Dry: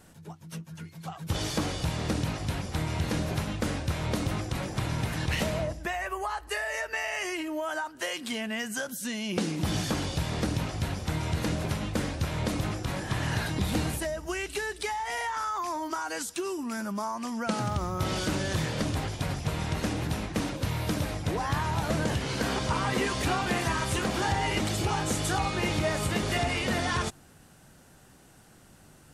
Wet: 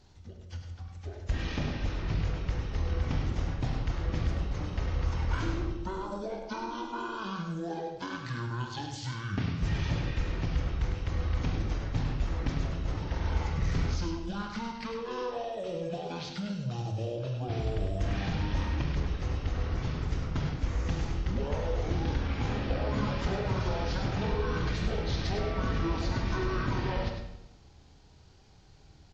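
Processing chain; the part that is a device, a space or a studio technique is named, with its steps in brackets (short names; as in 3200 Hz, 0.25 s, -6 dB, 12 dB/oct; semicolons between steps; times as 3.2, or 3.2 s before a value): monster voice (pitch shift -11 st; low shelf 140 Hz +7 dB; echo 0.102 s -7 dB; reverb RT60 0.95 s, pre-delay 27 ms, DRR 5.5 dB); gain -6 dB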